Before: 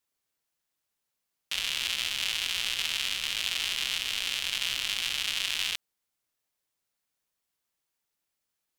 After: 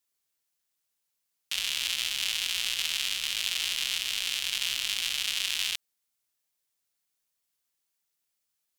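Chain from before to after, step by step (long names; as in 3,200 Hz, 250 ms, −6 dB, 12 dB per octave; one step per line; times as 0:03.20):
high-shelf EQ 2,700 Hz +8 dB
level −4.5 dB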